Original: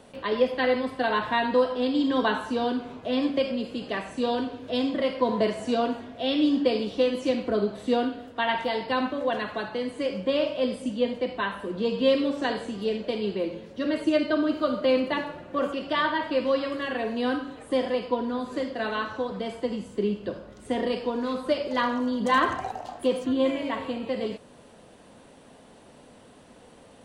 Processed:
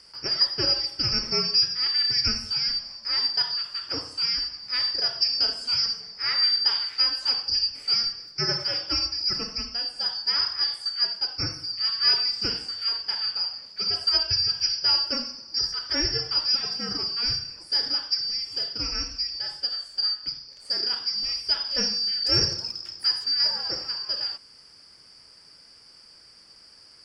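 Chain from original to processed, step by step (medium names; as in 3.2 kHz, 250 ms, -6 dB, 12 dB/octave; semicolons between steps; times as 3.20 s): four frequency bands reordered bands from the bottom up 2341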